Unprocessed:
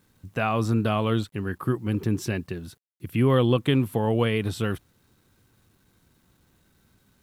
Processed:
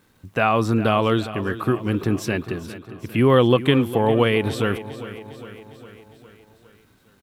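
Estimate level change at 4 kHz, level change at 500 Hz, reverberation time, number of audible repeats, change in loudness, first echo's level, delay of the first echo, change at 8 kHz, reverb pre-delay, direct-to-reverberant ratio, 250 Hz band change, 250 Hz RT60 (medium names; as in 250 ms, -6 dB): +5.5 dB, +6.5 dB, no reverb, 5, +4.5 dB, -14.5 dB, 406 ms, +2.5 dB, no reverb, no reverb, +4.0 dB, no reverb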